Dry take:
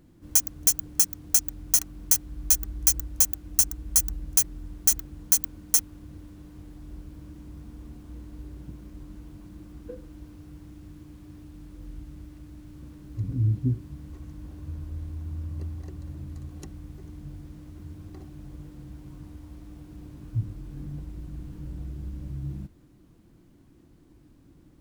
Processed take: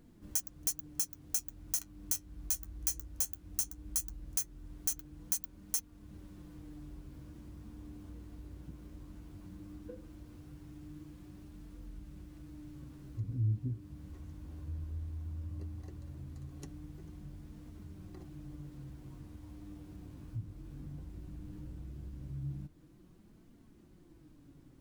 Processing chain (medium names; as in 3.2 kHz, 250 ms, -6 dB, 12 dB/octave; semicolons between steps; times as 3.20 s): compression 1.5:1, threshold -44 dBFS, peak gain reduction 10.5 dB; flange 0.17 Hz, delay 4.2 ms, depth 8.4 ms, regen +53%; trim +1 dB